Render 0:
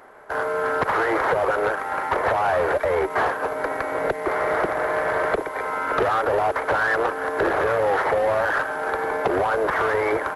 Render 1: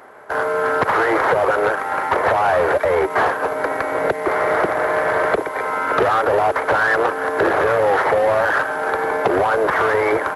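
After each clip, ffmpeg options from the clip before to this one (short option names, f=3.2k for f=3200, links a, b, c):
-af "highpass=73,volume=4.5dB"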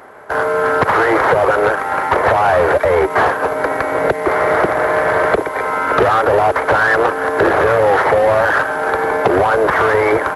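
-af "lowshelf=f=130:g=7,volume=3.5dB"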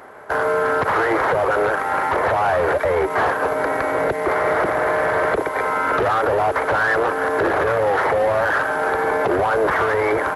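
-af "alimiter=limit=-9dB:level=0:latency=1:release=22,volume=-2dB"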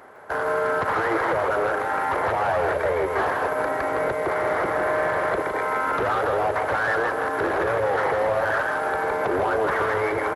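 -af "aecho=1:1:160:0.562,volume=-5.5dB"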